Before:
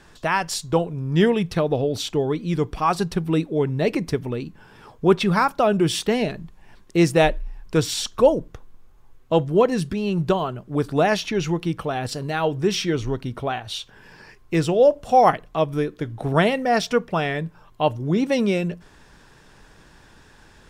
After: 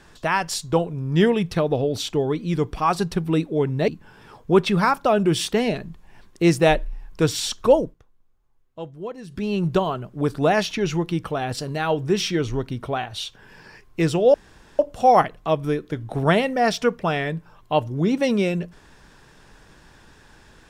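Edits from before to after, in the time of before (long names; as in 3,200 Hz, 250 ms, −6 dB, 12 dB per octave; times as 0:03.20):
0:03.88–0:04.42: remove
0:08.35–0:09.98: duck −15.5 dB, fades 0.15 s
0:14.88: splice in room tone 0.45 s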